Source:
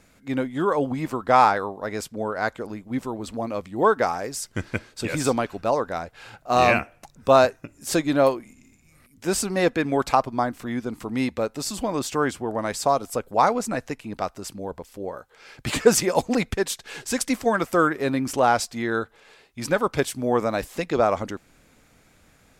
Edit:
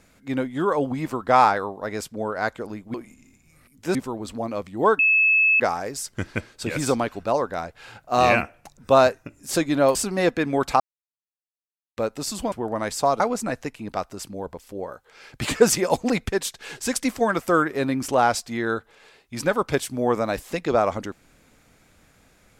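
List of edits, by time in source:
0:03.98: insert tone 2,600 Hz −14.5 dBFS 0.61 s
0:08.33–0:09.34: move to 0:02.94
0:10.19–0:11.36: silence
0:11.91–0:12.35: remove
0:13.03–0:13.45: remove

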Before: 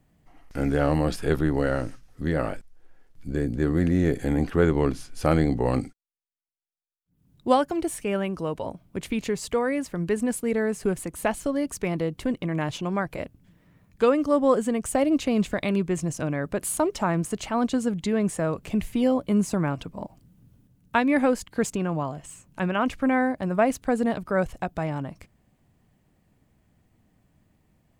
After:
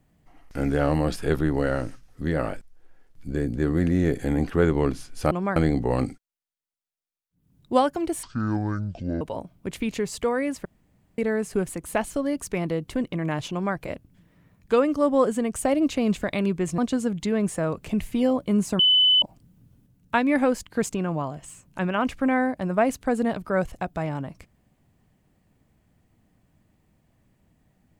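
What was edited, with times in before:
0:07.98–0:08.51: play speed 54%
0:09.95–0:10.48: fill with room tone
0:12.81–0:13.06: duplicate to 0:05.31
0:16.08–0:17.59: remove
0:19.60–0:20.03: beep over 3,010 Hz −14.5 dBFS

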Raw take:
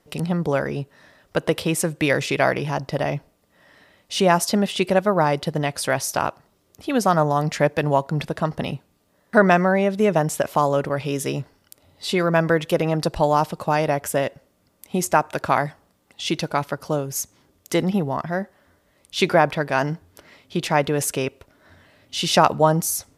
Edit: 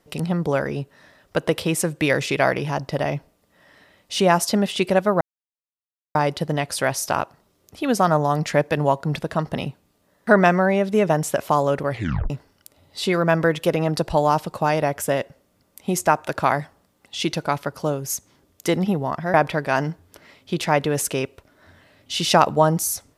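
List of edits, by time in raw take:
0:05.21: splice in silence 0.94 s
0:10.97: tape stop 0.39 s
0:18.40–0:19.37: remove

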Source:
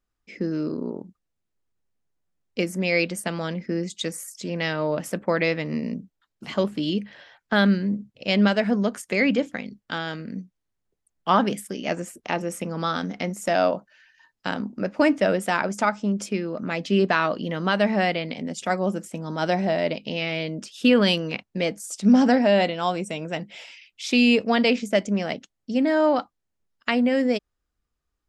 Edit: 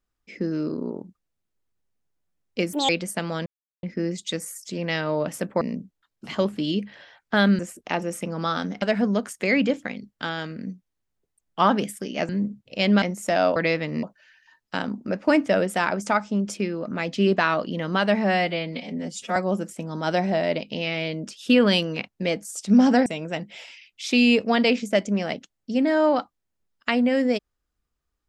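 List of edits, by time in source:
0:02.73–0:02.98: play speed 156%
0:03.55: splice in silence 0.37 s
0:05.33–0:05.80: move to 0:13.75
0:07.78–0:08.51: swap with 0:11.98–0:13.21
0:17.97–0:18.71: time-stretch 1.5×
0:22.41–0:23.06: remove

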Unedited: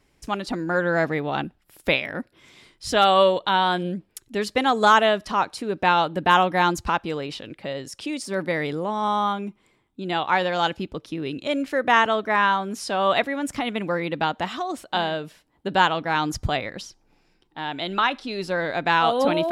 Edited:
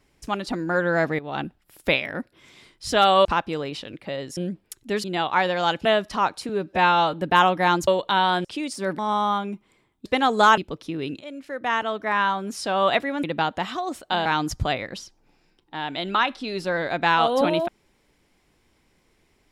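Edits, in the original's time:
0:01.19–0:01.46: fade in, from −13.5 dB
0:03.25–0:03.82: swap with 0:06.82–0:07.94
0:04.49–0:05.01: swap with 0:10.00–0:10.81
0:05.65–0:06.08: time-stretch 1.5×
0:08.48–0:08.93: remove
0:11.44–0:12.83: fade in, from −15.5 dB
0:13.47–0:14.06: remove
0:15.08–0:16.09: remove

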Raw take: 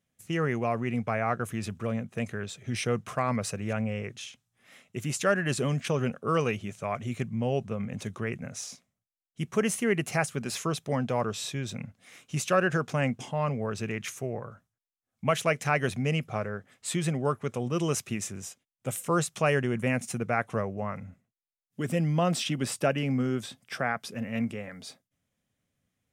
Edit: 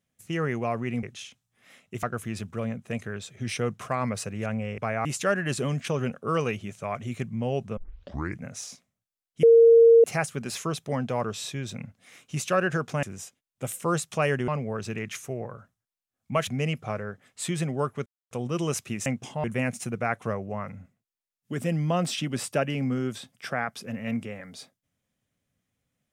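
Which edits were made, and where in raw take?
0:01.03–0:01.30: swap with 0:04.05–0:05.05
0:07.77: tape start 0.64 s
0:09.43–0:10.04: beep over 461 Hz −11 dBFS
0:13.03–0:13.41: swap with 0:18.27–0:19.72
0:15.40–0:15.93: remove
0:17.52: splice in silence 0.25 s

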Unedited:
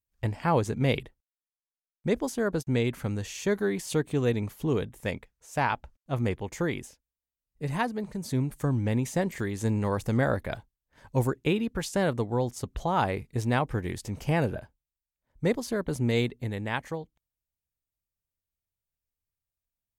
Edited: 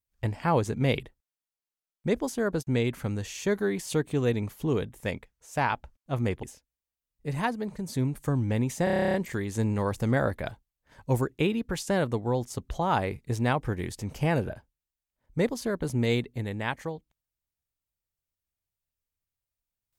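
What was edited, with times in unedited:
0:06.43–0:06.79: remove
0:09.20: stutter 0.03 s, 11 plays

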